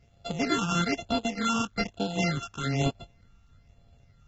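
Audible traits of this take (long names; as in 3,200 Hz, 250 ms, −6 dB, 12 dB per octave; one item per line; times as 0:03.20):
a buzz of ramps at a fixed pitch in blocks of 64 samples
phaser sweep stages 8, 1.1 Hz, lowest notch 570–1,900 Hz
a quantiser's noise floor 12 bits, dither none
AAC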